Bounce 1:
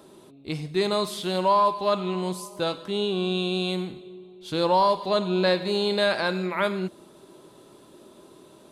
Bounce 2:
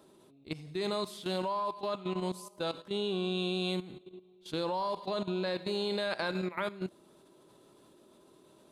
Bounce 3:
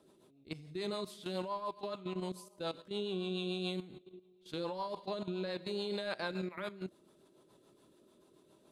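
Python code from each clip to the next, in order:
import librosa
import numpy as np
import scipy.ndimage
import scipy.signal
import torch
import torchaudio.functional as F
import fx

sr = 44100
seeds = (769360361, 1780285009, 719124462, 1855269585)

y1 = fx.level_steps(x, sr, step_db=14)
y1 = y1 * librosa.db_to_amplitude(-4.5)
y2 = fx.rotary(y1, sr, hz=7.0)
y2 = y2 * librosa.db_to_amplitude(-3.0)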